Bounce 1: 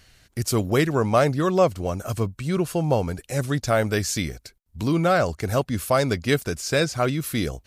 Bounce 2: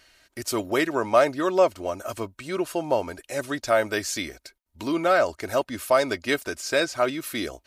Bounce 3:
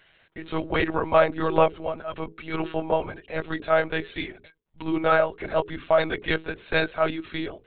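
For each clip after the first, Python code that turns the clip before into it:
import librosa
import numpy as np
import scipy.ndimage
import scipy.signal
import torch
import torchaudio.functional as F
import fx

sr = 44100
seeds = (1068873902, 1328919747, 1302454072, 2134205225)

y1 = fx.bass_treble(x, sr, bass_db=-15, treble_db=-4)
y1 = y1 + 0.43 * np.pad(y1, (int(3.2 * sr / 1000.0), 0))[:len(y1)]
y2 = fx.hum_notches(y1, sr, base_hz=60, count=8)
y2 = fx.lpc_monotone(y2, sr, seeds[0], pitch_hz=160.0, order=16)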